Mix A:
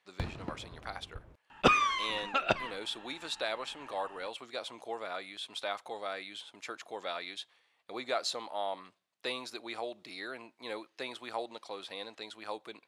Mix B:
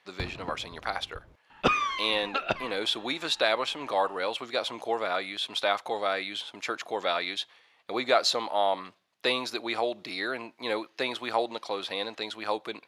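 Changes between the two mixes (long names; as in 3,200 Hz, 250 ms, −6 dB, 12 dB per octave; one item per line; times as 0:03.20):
speech +10.0 dB
master: add parametric band 8,500 Hz −7 dB 0.55 octaves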